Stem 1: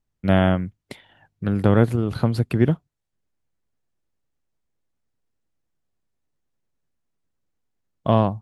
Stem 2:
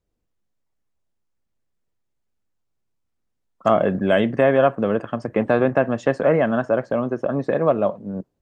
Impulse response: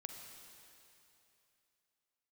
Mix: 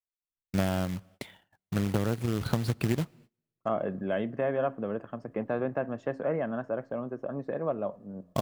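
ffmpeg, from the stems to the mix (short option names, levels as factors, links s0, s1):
-filter_complex "[0:a]acompressor=threshold=0.0891:ratio=8,acrusher=bits=3:mode=log:mix=0:aa=0.000001,adelay=300,volume=0.708,asplit=2[s0][s1];[s1]volume=0.126[s2];[1:a]highshelf=f=3100:g=-10,bandreject=f=89.46:t=h:w=4,bandreject=f=178.92:t=h:w=4,bandreject=f=268.38:t=h:w=4,volume=0.237,asplit=2[s3][s4];[s4]volume=0.0891[s5];[2:a]atrim=start_sample=2205[s6];[s2][s5]amix=inputs=2:normalize=0[s7];[s7][s6]afir=irnorm=-1:irlink=0[s8];[s0][s3][s8]amix=inputs=3:normalize=0,agate=range=0.0562:threshold=0.002:ratio=16:detection=peak"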